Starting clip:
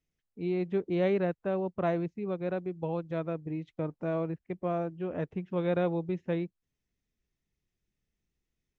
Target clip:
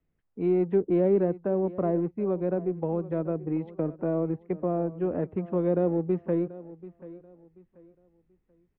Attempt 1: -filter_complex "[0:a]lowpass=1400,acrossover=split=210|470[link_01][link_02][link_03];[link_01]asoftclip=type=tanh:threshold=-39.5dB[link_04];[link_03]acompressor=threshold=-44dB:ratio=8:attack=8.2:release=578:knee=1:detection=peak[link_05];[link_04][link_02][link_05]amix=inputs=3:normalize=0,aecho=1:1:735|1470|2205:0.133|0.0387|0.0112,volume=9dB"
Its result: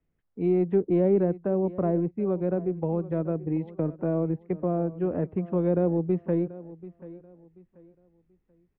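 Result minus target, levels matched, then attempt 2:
soft clipping: distortion −6 dB
-filter_complex "[0:a]lowpass=1400,acrossover=split=210|470[link_01][link_02][link_03];[link_01]asoftclip=type=tanh:threshold=-48dB[link_04];[link_03]acompressor=threshold=-44dB:ratio=8:attack=8.2:release=578:knee=1:detection=peak[link_05];[link_04][link_02][link_05]amix=inputs=3:normalize=0,aecho=1:1:735|1470|2205:0.133|0.0387|0.0112,volume=9dB"

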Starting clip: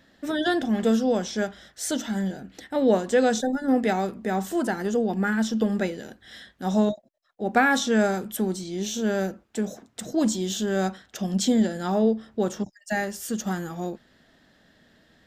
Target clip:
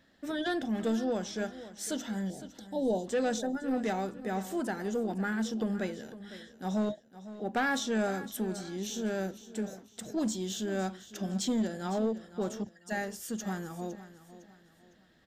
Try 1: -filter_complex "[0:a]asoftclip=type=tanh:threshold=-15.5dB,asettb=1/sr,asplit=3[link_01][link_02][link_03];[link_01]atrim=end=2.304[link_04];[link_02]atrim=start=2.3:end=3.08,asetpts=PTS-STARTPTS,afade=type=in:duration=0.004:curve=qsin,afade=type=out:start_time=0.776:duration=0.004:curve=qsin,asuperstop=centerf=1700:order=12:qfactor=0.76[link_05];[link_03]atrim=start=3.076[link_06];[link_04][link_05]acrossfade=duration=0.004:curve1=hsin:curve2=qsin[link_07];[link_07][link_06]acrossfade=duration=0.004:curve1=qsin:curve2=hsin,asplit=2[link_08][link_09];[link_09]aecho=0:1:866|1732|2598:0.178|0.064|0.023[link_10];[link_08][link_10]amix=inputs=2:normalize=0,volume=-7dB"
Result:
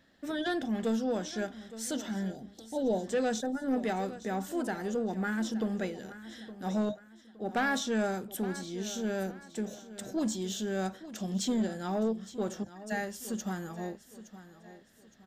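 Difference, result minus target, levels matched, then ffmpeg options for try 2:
echo 359 ms late
-filter_complex "[0:a]asoftclip=type=tanh:threshold=-15.5dB,asettb=1/sr,asplit=3[link_01][link_02][link_03];[link_01]atrim=end=2.304[link_04];[link_02]atrim=start=2.3:end=3.08,asetpts=PTS-STARTPTS,afade=type=in:duration=0.004:curve=qsin,afade=type=out:start_time=0.776:duration=0.004:curve=qsin,asuperstop=centerf=1700:order=12:qfactor=0.76[link_05];[link_03]atrim=start=3.076[link_06];[link_04][link_05]acrossfade=duration=0.004:curve1=hsin:curve2=qsin[link_07];[link_07][link_06]acrossfade=duration=0.004:curve1=qsin:curve2=hsin,asplit=2[link_08][link_09];[link_09]aecho=0:1:507|1014|1521:0.178|0.064|0.023[link_10];[link_08][link_10]amix=inputs=2:normalize=0,volume=-7dB"

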